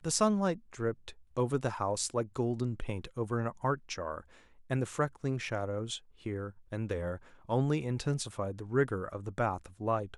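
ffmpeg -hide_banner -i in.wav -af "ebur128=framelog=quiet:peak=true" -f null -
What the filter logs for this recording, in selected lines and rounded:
Integrated loudness:
  I:         -34.2 LUFS
  Threshold: -44.4 LUFS
Loudness range:
  LRA:         2.8 LU
  Threshold: -55.0 LUFS
  LRA low:   -36.6 LUFS
  LRA high:  -33.8 LUFS
True peak:
  Peak:      -11.6 dBFS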